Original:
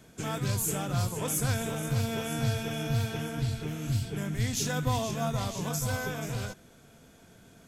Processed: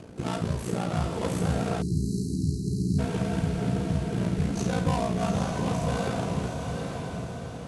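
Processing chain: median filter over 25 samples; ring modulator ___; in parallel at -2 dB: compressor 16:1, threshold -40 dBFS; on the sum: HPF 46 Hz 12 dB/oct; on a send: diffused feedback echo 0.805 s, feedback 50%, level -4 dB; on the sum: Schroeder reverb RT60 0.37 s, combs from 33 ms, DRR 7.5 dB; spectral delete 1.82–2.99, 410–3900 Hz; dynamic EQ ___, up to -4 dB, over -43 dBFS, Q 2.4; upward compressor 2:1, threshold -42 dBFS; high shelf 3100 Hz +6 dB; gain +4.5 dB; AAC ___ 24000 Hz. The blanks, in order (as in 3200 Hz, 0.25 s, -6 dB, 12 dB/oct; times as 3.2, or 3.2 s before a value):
29 Hz, 110 Hz, 96 kbps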